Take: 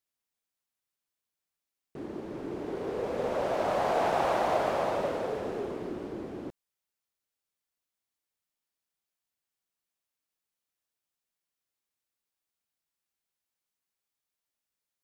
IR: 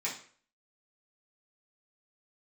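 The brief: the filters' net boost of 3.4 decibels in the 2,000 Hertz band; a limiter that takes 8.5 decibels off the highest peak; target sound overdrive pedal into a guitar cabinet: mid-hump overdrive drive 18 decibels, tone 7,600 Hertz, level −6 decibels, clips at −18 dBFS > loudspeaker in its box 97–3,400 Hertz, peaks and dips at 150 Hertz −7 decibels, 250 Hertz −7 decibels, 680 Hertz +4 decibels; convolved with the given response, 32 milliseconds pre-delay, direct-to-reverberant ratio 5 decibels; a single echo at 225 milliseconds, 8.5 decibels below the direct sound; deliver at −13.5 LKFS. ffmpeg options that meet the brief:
-filter_complex "[0:a]equalizer=frequency=2000:width_type=o:gain=4.5,alimiter=limit=-23dB:level=0:latency=1,aecho=1:1:225:0.376,asplit=2[link_01][link_02];[1:a]atrim=start_sample=2205,adelay=32[link_03];[link_02][link_03]afir=irnorm=-1:irlink=0,volume=-9.5dB[link_04];[link_01][link_04]amix=inputs=2:normalize=0,asplit=2[link_05][link_06];[link_06]highpass=frequency=720:poles=1,volume=18dB,asoftclip=type=tanh:threshold=-18dB[link_07];[link_05][link_07]amix=inputs=2:normalize=0,lowpass=frequency=7600:poles=1,volume=-6dB,highpass=97,equalizer=frequency=150:width_type=q:width=4:gain=-7,equalizer=frequency=250:width_type=q:width=4:gain=-7,equalizer=frequency=680:width_type=q:width=4:gain=4,lowpass=frequency=3400:width=0.5412,lowpass=frequency=3400:width=1.3066,volume=12.5dB"

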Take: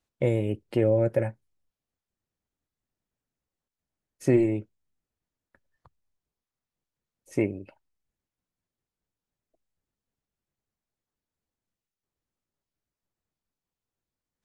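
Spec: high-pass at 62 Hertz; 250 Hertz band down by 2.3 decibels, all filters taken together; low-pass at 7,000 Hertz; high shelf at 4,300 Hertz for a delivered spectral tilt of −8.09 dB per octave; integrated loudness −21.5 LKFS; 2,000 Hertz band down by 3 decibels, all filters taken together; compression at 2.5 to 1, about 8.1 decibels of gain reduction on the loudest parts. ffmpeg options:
ffmpeg -i in.wav -af "highpass=62,lowpass=7000,equalizer=frequency=250:width_type=o:gain=-3.5,equalizer=frequency=2000:width_type=o:gain=-5,highshelf=frequency=4300:gain=7,acompressor=threshold=-31dB:ratio=2.5,volume=13.5dB" out.wav

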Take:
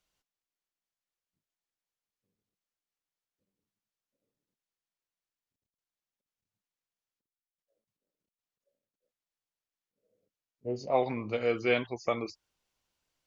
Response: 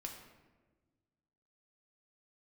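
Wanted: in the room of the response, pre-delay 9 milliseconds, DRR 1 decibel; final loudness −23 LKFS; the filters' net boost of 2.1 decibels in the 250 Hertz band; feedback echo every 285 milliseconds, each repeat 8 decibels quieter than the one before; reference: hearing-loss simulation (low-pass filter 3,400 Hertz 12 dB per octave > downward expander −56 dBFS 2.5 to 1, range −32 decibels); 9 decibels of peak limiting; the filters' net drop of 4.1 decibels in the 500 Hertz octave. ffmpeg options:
-filter_complex "[0:a]equalizer=frequency=250:width_type=o:gain=4.5,equalizer=frequency=500:width_type=o:gain=-6,alimiter=limit=-24dB:level=0:latency=1,aecho=1:1:285|570|855|1140|1425:0.398|0.159|0.0637|0.0255|0.0102,asplit=2[link_01][link_02];[1:a]atrim=start_sample=2205,adelay=9[link_03];[link_02][link_03]afir=irnorm=-1:irlink=0,volume=2dB[link_04];[link_01][link_04]amix=inputs=2:normalize=0,lowpass=3400,agate=range=-32dB:threshold=-56dB:ratio=2.5,volume=9.5dB"

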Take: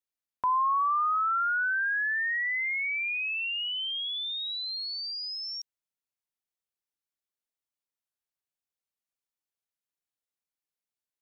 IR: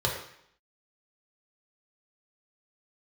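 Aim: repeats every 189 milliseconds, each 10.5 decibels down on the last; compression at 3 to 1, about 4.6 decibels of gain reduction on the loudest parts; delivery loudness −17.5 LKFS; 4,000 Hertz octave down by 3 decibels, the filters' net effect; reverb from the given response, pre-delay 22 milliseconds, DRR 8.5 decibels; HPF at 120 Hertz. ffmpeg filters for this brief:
-filter_complex "[0:a]highpass=120,equalizer=frequency=4000:width_type=o:gain=-4,acompressor=threshold=-31dB:ratio=3,aecho=1:1:189|378|567:0.299|0.0896|0.0269,asplit=2[link_01][link_02];[1:a]atrim=start_sample=2205,adelay=22[link_03];[link_02][link_03]afir=irnorm=-1:irlink=0,volume=-19dB[link_04];[link_01][link_04]amix=inputs=2:normalize=0,volume=13.5dB"

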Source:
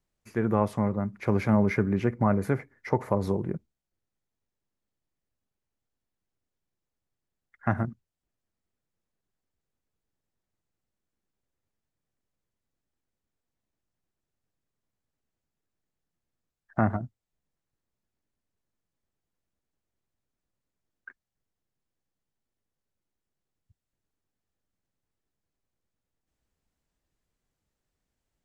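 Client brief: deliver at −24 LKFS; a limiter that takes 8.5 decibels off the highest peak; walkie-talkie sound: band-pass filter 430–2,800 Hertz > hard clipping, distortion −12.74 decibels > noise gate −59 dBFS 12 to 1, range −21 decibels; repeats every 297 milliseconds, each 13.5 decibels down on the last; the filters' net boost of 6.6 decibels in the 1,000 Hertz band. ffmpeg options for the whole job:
ffmpeg -i in.wav -af "equalizer=frequency=1000:width_type=o:gain=8.5,alimiter=limit=-14dB:level=0:latency=1,highpass=430,lowpass=2800,aecho=1:1:297|594:0.211|0.0444,asoftclip=type=hard:threshold=-24dB,agate=range=-21dB:threshold=-59dB:ratio=12,volume=10.5dB" out.wav

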